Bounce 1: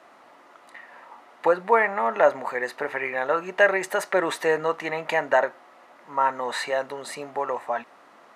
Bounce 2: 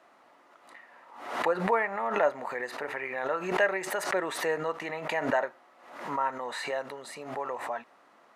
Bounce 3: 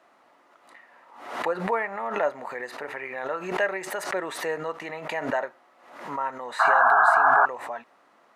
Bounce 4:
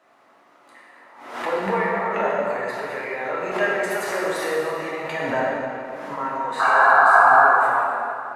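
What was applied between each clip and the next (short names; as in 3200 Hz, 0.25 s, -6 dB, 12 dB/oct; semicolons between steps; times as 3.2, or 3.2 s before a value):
backwards sustainer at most 74 dB/s; gain -7.5 dB
painted sound noise, 6.59–7.46, 640–1700 Hz -18 dBFS
reverb RT60 2.7 s, pre-delay 4 ms, DRR -5.5 dB; gain -1.5 dB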